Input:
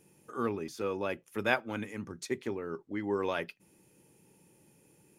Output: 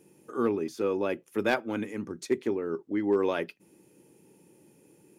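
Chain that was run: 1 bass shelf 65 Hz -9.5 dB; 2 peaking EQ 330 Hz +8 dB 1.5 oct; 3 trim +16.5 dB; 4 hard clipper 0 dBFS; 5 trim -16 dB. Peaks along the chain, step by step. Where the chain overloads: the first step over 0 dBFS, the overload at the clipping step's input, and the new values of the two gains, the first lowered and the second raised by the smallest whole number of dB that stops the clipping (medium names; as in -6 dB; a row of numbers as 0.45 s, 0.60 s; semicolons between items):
-10.5 dBFS, -9.5 dBFS, +7.0 dBFS, 0.0 dBFS, -16.0 dBFS; step 3, 7.0 dB; step 3 +9.5 dB, step 5 -9 dB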